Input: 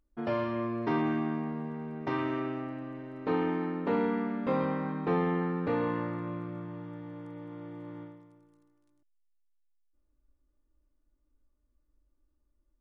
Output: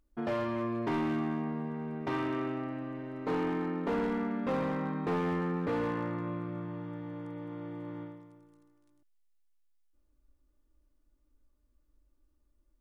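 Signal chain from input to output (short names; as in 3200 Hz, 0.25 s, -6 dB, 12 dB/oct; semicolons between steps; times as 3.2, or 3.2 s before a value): in parallel at -3 dB: compressor, threshold -40 dBFS, peak gain reduction 15 dB; on the sum: hard clip -25 dBFS, distortion -14 dB; gain -2 dB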